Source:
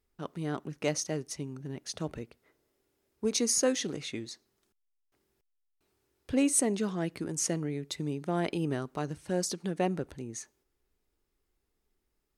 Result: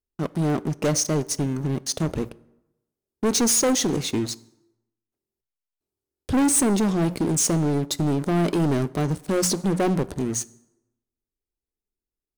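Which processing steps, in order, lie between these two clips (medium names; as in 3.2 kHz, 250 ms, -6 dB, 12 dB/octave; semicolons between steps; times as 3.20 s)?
peaking EQ 1.9 kHz -10.5 dB 2.3 oct; hum notches 60/120/180 Hz; waveshaping leveller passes 5; plate-style reverb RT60 0.95 s, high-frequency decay 0.65×, DRR 18.5 dB; trim -1.5 dB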